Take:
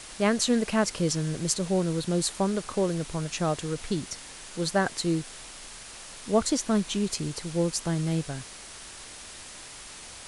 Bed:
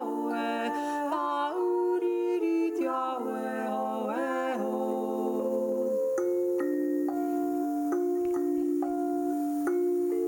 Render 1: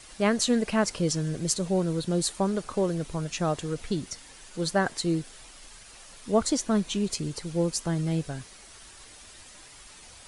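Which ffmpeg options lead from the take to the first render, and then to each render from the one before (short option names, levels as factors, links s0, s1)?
-af "afftdn=nr=8:nf=-44"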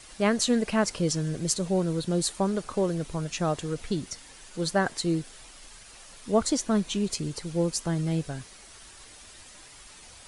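-af anull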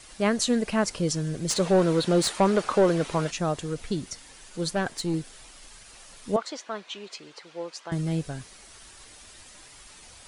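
-filter_complex "[0:a]asplit=3[s0][s1][s2];[s0]afade=t=out:st=1.49:d=0.02[s3];[s1]asplit=2[s4][s5];[s5]highpass=f=720:p=1,volume=10,asoftclip=type=tanh:threshold=0.376[s6];[s4][s6]amix=inputs=2:normalize=0,lowpass=f=2300:p=1,volume=0.501,afade=t=in:st=1.49:d=0.02,afade=t=out:st=3.3:d=0.02[s7];[s2]afade=t=in:st=3.3:d=0.02[s8];[s3][s7][s8]amix=inputs=3:normalize=0,asettb=1/sr,asplit=3[s9][s10][s11];[s9]atrim=end=4.734[s12];[s10]atrim=start=4.73:end=5.14,asetpts=PTS-STARTPTS,afade=t=in:d=0.004:c=qsin,afade=t=out:st=0.406:d=0.004:c=qsin,aeval=exprs='(tanh(8.91*val(0)+0.35)-tanh(0.35))/8.91':c=same[s13];[s11]atrim=start=5.136[s14];[s12][s13]acrossfade=d=0.004:c1=hsin:c2=qsin[s15];[s15][s14]acrossfade=d=0.004:c1=qsin:c2=hsin,asettb=1/sr,asplit=3[s16][s17][s18];[s16]atrim=end=6.364[s19];[s17]atrim=start=6.36:end=7.92,asetpts=PTS-STARTPTS,afade=t=in:d=0.004:c=qsin,afade=t=out:st=1.556:d=0.004:c=qsin,highpass=670,lowpass=3500[s20];[s18]atrim=start=7.916[s21];[s19][s20]acrossfade=d=0.004:c1=hsin:c2=qsin[s22];[s22][s21]acrossfade=d=0.004:c1=qsin:c2=hsin"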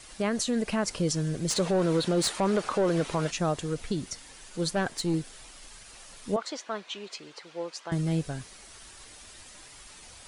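-af "alimiter=limit=0.119:level=0:latency=1:release=78"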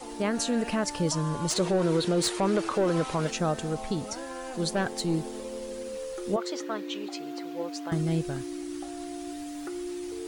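-filter_complex "[1:a]volume=0.376[s0];[0:a][s0]amix=inputs=2:normalize=0"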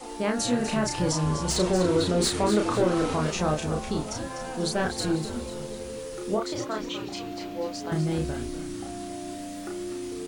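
-filter_complex "[0:a]asplit=2[s0][s1];[s1]adelay=33,volume=0.708[s2];[s0][s2]amix=inputs=2:normalize=0,asplit=6[s3][s4][s5][s6][s7][s8];[s4]adelay=247,afreqshift=-90,volume=0.335[s9];[s5]adelay=494,afreqshift=-180,volume=0.155[s10];[s6]adelay=741,afreqshift=-270,volume=0.0708[s11];[s7]adelay=988,afreqshift=-360,volume=0.0327[s12];[s8]adelay=1235,afreqshift=-450,volume=0.015[s13];[s3][s9][s10][s11][s12][s13]amix=inputs=6:normalize=0"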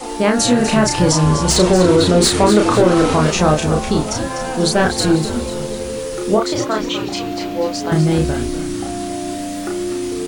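-af "volume=3.98,alimiter=limit=0.708:level=0:latency=1"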